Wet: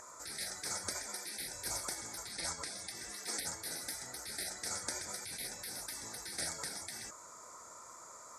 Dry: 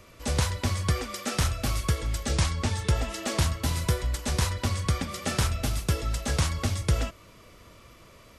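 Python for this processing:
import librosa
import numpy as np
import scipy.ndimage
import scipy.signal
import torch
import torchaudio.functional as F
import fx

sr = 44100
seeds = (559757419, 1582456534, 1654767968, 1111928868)

y = x + 10.0 ** (-29.0 / 20.0) * np.sin(2.0 * np.pi * 1700.0 * np.arange(len(x)) / sr)
y = fx.double_bandpass(y, sr, hz=2800.0, octaves=2.7)
y = fx.spec_gate(y, sr, threshold_db=-25, keep='weak')
y = y * 10.0 ** (17.0 / 20.0)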